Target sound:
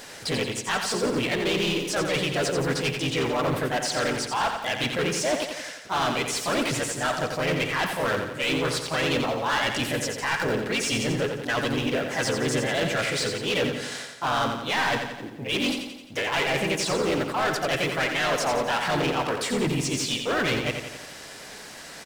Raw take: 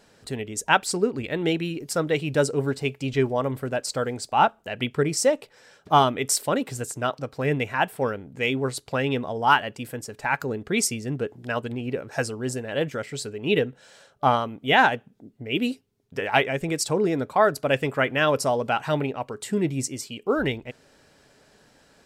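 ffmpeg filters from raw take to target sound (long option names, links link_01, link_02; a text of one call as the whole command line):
ffmpeg -i in.wav -filter_complex "[0:a]asplit=3[link_01][link_02][link_03];[link_02]asetrate=35002,aresample=44100,atempo=1.25992,volume=-16dB[link_04];[link_03]asetrate=52444,aresample=44100,atempo=0.840896,volume=-2dB[link_05];[link_01][link_04][link_05]amix=inputs=3:normalize=0,tiltshelf=frequency=760:gain=-5.5,areverse,acompressor=threshold=-28dB:ratio=5,areverse,asoftclip=type=tanh:threshold=-32.5dB,acrossover=split=7100[link_06][link_07];[link_07]acompressor=threshold=-55dB:ratio=4:attack=1:release=60[link_08];[link_06][link_08]amix=inputs=2:normalize=0,asplit=2[link_09][link_10];[link_10]acrusher=bits=5:mode=log:mix=0:aa=0.000001,volume=-4dB[link_11];[link_09][link_11]amix=inputs=2:normalize=0,aecho=1:1:87|174|261|348|435|522|609:0.473|0.26|0.143|0.0787|0.0433|0.0238|0.0131,volume=6.5dB" out.wav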